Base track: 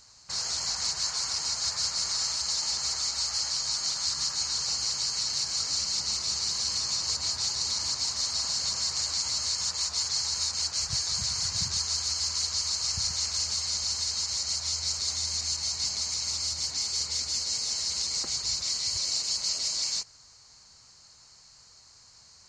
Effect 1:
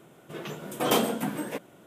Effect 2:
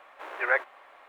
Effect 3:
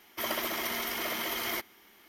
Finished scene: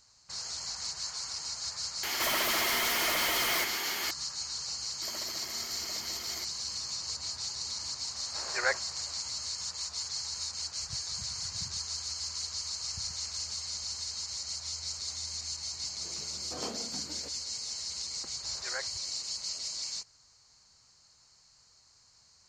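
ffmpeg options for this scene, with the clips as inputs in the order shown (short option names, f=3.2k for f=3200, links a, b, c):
-filter_complex "[3:a]asplit=2[a][b];[2:a]asplit=2[c][d];[0:a]volume=-7.5dB[e];[a]asplit=2[f][g];[g]highpass=f=720:p=1,volume=39dB,asoftclip=type=tanh:threshold=-18dB[h];[f][h]amix=inputs=2:normalize=0,lowpass=f=7.6k:p=1,volume=-6dB[i];[1:a]acrossover=split=3300[j][k];[k]acompressor=threshold=-47dB:ratio=4:attack=1:release=60[l];[j][l]amix=inputs=2:normalize=0[m];[i]atrim=end=2.08,asetpts=PTS-STARTPTS,volume=-5dB,afade=t=in:d=0.004:c=hsin,afade=t=out:st=2.076:d=0.004:c=hsin,adelay=2030[n];[b]atrim=end=2.08,asetpts=PTS-STARTPTS,volume=-12.5dB,afade=t=in:d=0.004:c=hsin,afade=t=out:st=2.076:d=0.004:c=hsin,adelay=4840[o];[c]atrim=end=1.08,asetpts=PTS-STARTPTS,volume=-4.5dB,afade=t=in:d=0.004:c=hsin,afade=t=out:st=1.076:d=0.004:c=hsin,adelay=8150[p];[m]atrim=end=1.86,asetpts=PTS-STARTPTS,volume=-16dB,afade=t=in:d=0.004:c=hsin,afade=t=out:st=1.856:d=0.004:c=hsin,adelay=15710[q];[d]atrim=end=1.08,asetpts=PTS-STARTPTS,volume=-14.5dB,afade=t=in:d=0.004:c=hsin,afade=t=out:st=1.076:d=0.004:c=hsin,adelay=18240[r];[e][n][o][p][q][r]amix=inputs=6:normalize=0"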